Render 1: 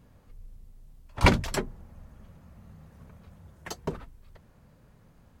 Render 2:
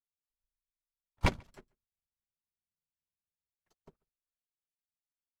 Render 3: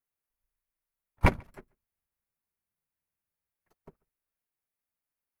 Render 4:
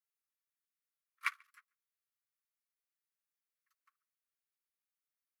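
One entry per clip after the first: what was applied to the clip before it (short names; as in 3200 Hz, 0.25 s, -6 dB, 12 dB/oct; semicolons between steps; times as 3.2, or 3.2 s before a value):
half-wave gain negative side -7 dB; outdoor echo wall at 24 m, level -13 dB; upward expander 2.5:1, over -50 dBFS; gain -4.5 dB
band shelf 4900 Hz -10 dB; gain +6 dB
Chebyshev high-pass 1100 Hz, order 8; gain -4.5 dB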